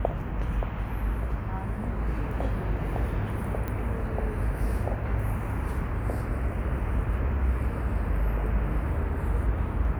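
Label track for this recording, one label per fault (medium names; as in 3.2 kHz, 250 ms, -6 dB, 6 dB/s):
3.680000	3.680000	pop -20 dBFS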